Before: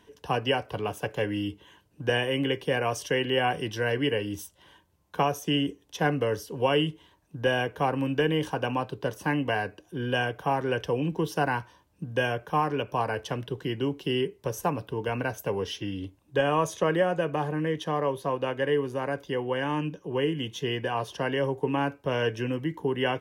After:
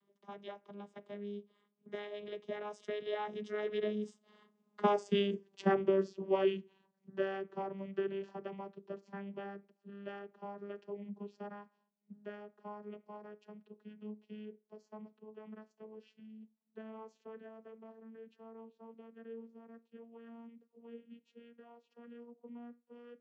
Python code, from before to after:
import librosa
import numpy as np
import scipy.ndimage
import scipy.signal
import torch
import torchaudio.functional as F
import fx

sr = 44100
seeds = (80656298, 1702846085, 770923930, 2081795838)

y = fx.vocoder_glide(x, sr, note=54, semitones=6)
y = fx.doppler_pass(y, sr, speed_mps=26, closest_m=20.0, pass_at_s=5.18)